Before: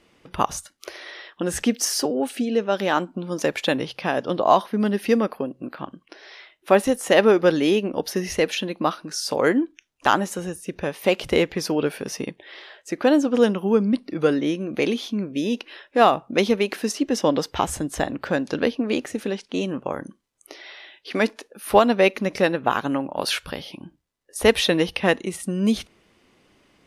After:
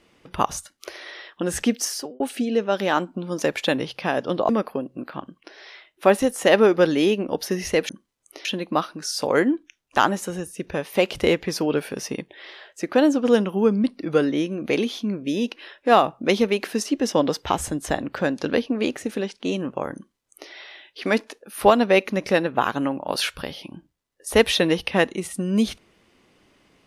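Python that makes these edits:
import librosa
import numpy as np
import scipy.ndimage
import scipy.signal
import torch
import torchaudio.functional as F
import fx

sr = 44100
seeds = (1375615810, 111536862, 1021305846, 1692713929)

y = fx.edit(x, sr, fx.fade_out_span(start_s=1.73, length_s=0.47),
    fx.cut(start_s=4.49, length_s=0.65),
    fx.duplicate(start_s=20.04, length_s=0.56, to_s=8.54), tone=tone)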